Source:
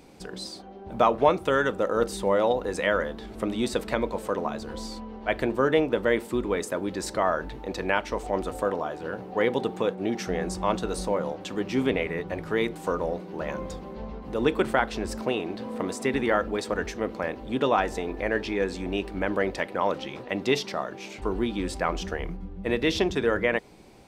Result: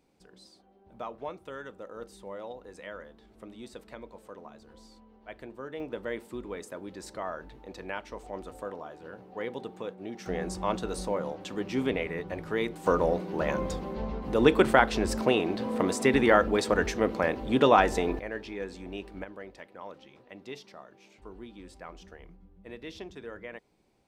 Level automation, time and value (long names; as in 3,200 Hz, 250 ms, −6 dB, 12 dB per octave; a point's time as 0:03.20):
−18 dB
from 0:05.80 −11.5 dB
from 0:10.26 −4 dB
from 0:12.86 +3 dB
from 0:18.19 −10 dB
from 0:19.24 −18 dB